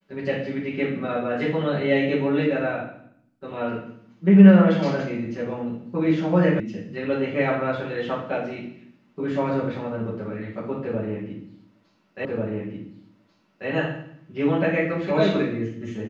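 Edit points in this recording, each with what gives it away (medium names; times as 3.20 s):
6.60 s: sound stops dead
12.25 s: repeat of the last 1.44 s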